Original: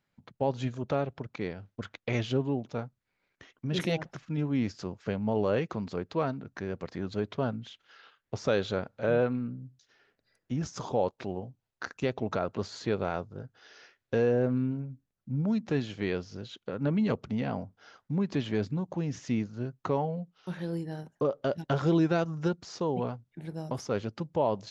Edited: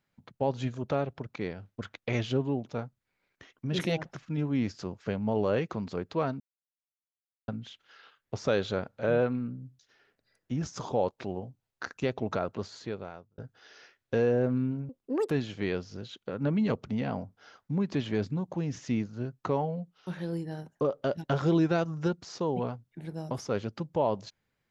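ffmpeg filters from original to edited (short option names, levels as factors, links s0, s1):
-filter_complex "[0:a]asplit=6[s0][s1][s2][s3][s4][s5];[s0]atrim=end=6.4,asetpts=PTS-STARTPTS,afade=t=out:st=6.396:d=0.004:c=hsin[s6];[s1]atrim=start=6.4:end=7.48,asetpts=PTS-STARTPTS,volume=0[s7];[s2]atrim=start=7.48:end=13.38,asetpts=PTS-STARTPTS,afade=t=in:d=0.004:c=hsin,afade=t=out:st=4.88:d=1.02[s8];[s3]atrim=start=13.38:end=14.894,asetpts=PTS-STARTPTS,afade=t=in:d=0.004:c=hsin[s9];[s4]atrim=start=14.89:end=15.71,asetpts=PTS-STARTPTS,asetrate=86436,aresample=44100[s10];[s5]atrim=start=15.706[s11];[s6][s7][s8][s9]concat=n=4:v=0:a=1[s12];[s12][s10]acrossfade=d=0.004:c1=hsin:c2=hsin[s13];[s13][s11]acrossfade=d=0.004:c1=hsin:c2=hsin"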